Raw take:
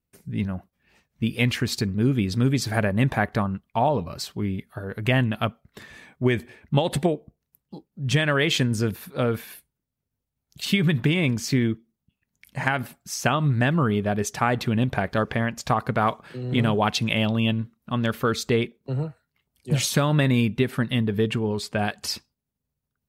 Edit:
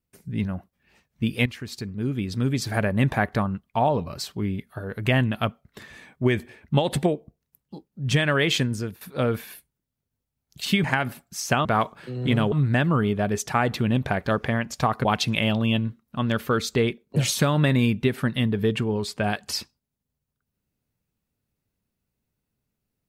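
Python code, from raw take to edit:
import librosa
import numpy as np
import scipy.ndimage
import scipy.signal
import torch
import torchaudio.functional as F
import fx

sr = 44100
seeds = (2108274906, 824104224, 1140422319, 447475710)

y = fx.edit(x, sr, fx.fade_in_from(start_s=1.46, length_s=1.55, floor_db=-13.5),
    fx.fade_out_to(start_s=8.53, length_s=0.48, floor_db=-13.0),
    fx.cut(start_s=10.84, length_s=1.74),
    fx.move(start_s=15.92, length_s=0.87, to_s=13.39),
    fx.cut(start_s=18.9, length_s=0.81), tone=tone)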